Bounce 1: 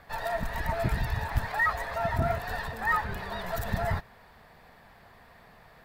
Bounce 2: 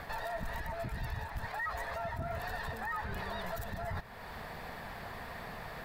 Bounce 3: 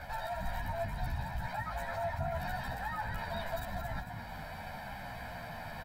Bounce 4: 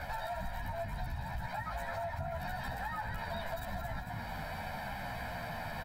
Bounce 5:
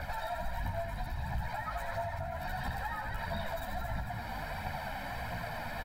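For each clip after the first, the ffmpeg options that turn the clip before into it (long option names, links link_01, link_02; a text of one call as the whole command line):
ffmpeg -i in.wav -af "areverse,acompressor=threshold=-35dB:ratio=10,areverse,alimiter=level_in=16dB:limit=-24dB:level=0:latency=1:release=350,volume=-16dB,volume=10.5dB" out.wav
ffmpeg -i in.wav -filter_complex "[0:a]aecho=1:1:1.3:0.83,asplit=5[link_01][link_02][link_03][link_04][link_05];[link_02]adelay=221,afreqshift=53,volume=-7dB[link_06];[link_03]adelay=442,afreqshift=106,volume=-16.1dB[link_07];[link_04]adelay=663,afreqshift=159,volume=-25.2dB[link_08];[link_05]adelay=884,afreqshift=212,volume=-34.4dB[link_09];[link_01][link_06][link_07][link_08][link_09]amix=inputs=5:normalize=0,asplit=2[link_10][link_11];[link_11]adelay=11.8,afreqshift=-0.82[link_12];[link_10][link_12]amix=inputs=2:normalize=1" out.wav
ffmpeg -i in.wav -af "acompressor=threshold=-39dB:ratio=6,volume=4dB" out.wav
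ffmpeg -i in.wav -af "aphaser=in_gain=1:out_gain=1:delay=4.2:decay=0.4:speed=1.5:type=triangular,aecho=1:1:83:0.398" out.wav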